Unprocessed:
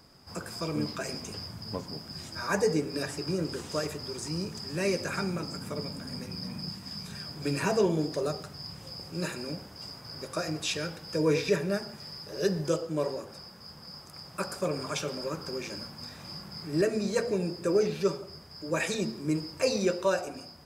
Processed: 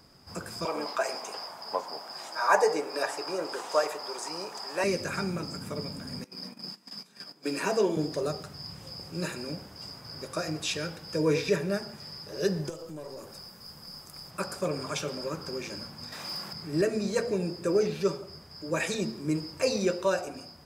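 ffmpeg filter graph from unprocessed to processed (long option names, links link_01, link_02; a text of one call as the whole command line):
ffmpeg -i in.wav -filter_complex "[0:a]asettb=1/sr,asplit=3[link_01][link_02][link_03];[link_01]atrim=end=0.654[link_04];[link_02]atrim=start=0.65:end=4.84,asetpts=PTS-STARTPTS,afade=type=in:duration=0.004:curve=qsin,afade=type=out:start_time=4.186:duration=0.004:curve=qsin,highpass=520,equalizer=frequency=820:width=0.89:gain=13.5[link_05];[link_03]atrim=start=4.836[link_06];[link_04][link_05]acrossfade=duration=0.004:curve1=hsin:curve2=qsin[link_07];[link_07][link_06]acrossfade=duration=0.004:curve1=qsin:curve2=hsin,asettb=1/sr,asplit=3[link_08][link_09][link_10];[link_08]atrim=end=6.244[link_11];[link_09]atrim=start=6.24:end=7.97,asetpts=PTS-STARTPTS,afade=type=in:duration=0.004:curve=qsin,afade=type=out:start_time=1.726:duration=0.004:curve=qsin,highpass=frequency=220:width=0.5412,highpass=frequency=220:width=1.3066,agate=range=-15dB:threshold=-42dB:ratio=16:release=100:detection=peak[link_12];[link_10]atrim=start=7.966[link_13];[link_11][link_12]acrossfade=duration=0.004:curve1=hsin:curve2=qsin[link_14];[link_14][link_13]acrossfade=duration=0.004:curve1=qsin:curve2=hsin,asettb=1/sr,asplit=3[link_15][link_16][link_17];[link_15]atrim=end=12.694[link_18];[link_16]atrim=start=12.69:end=14.31,asetpts=PTS-STARTPTS,afade=type=in:duration=0.004:curve=qsin,afade=type=out:start_time=1.616:duration=0.004:curve=qsin,highshelf=frequency=7900:gain=11.5,acompressor=threshold=-36dB:ratio=4:attack=3.2:release=140:knee=1:detection=peak,aeval=exprs='(tanh(35.5*val(0)+0.4)-tanh(0.4))/35.5':channel_layout=same[link_19];[link_17]atrim=start=14.306[link_20];[link_18][link_19]acrossfade=duration=0.004:curve1=hsin:curve2=qsin[link_21];[link_21][link_20]acrossfade=duration=0.004:curve1=qsin:curve2=hsin,asettb=1/sr,asplit=3[link_22][link_23][link_24];[link_22]atrim=end=16.124[link_25];[link_23]atrim=start=16.12:end=16.53,asetpts=PTS-STARTPTS,afade=type=in:duration=0.004:curve=qsin,afade=type=out:start_time=0.406:duration=0.004:curve=qsin,highpass=frequency=540:poles=1,aeval=exprs='0.0282*sin(PI/2*1.78*val(0)/0.0282)':channel_layout=same[link_26];[link_24]atrim=start=16.526[link_27];[link_25][link_26]acrossfade=duration=0.004:curve1=hsin:curve2=qsin[link_28];[link_28][link_27]acrossfade=duration=0.004:curve1=qsin:curve2=hsin" out.wav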